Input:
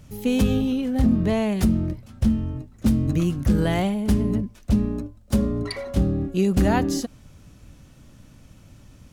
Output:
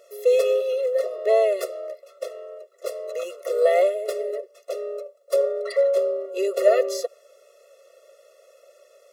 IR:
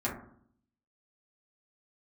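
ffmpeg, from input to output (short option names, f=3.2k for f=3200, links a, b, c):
-filter_complex "[0:a]asplit=2[a][b];[b]asetrate=37084,aresample=44100,atempo=1.18921,volume=-15dB[c];[a][c]amix=inputs=2:normalize=0,highpass=f=540:t=q:w=4.9,afftfilt=real='re*eq(mod(floor(b*sr/1024/360),2),1)':imag='im*eq(mod(floor(b*sr/1024/360),2),1)':win_size=1024:overlap=0.75,volume=1dB"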